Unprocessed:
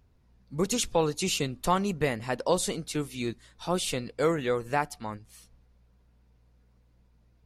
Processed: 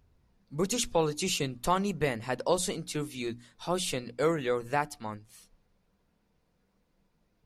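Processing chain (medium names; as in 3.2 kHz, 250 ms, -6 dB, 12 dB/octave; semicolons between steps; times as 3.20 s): hum notches 60/120/180/240/300 Hz; trim -1.5 dB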